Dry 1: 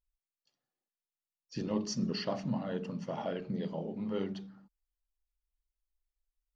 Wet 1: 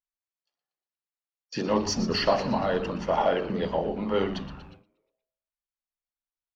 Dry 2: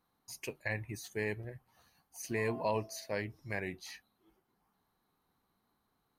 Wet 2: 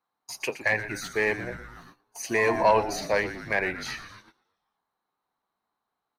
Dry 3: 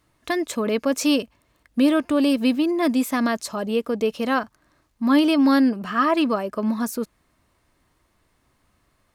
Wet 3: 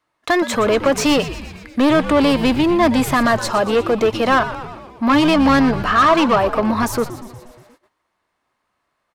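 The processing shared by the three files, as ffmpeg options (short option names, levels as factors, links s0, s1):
-filter_complex "[0:a]asplit=2[s0][s1];[s1]highpass=f=720:p=1,volume=11.2,asoftclip=type=tanh:threshold=0.422[s2];[s0][s2]amix=inputs=2:normalize=0,lowpass=f=3100:p=1,volume=0.501,asplit=8[s3][s4][s5][s6][s7][s8][s9][s10];[s4]adelay=119,afreqshift=-120,volume=0.237[s11];[s5]adelay=238,afreqshift=-240,volume=0.15[s12];[s6]adelay=357,afreqshift=-360,volume=0.0944[s13];[s7]adelay=476,afreqshift=-480,volume=0.0596[s14];[s8]adelay=595,afreqshift=-600,volume=0.0372[s15];[s9]adelay=714,afreqshift=-720,volume=0.0234[s16];[s10]adelay=833,afreqshift=-840,volume=0.0148[s17];[s3][s11][s12][s13][s14][s15][s16][s17]amix=inputs=8:normalize=0,acrossover=split=780|1000[s18][s19][s20];[s19]acontrast=74[s21];[s18][s21][s20]amix=inputs=3:normalize=0,agate=range=0.126:threshold=0.00398:ratio=16:detection=peak"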